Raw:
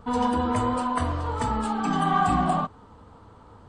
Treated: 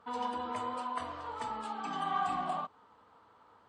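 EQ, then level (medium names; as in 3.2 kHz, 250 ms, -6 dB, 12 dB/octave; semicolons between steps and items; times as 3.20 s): dynamic bell 1.6 kHz, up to -5 dB, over -38 dBFS, Q 1.7; band-pass filter 1.9 kHz, Q 0.53; -6.0 dB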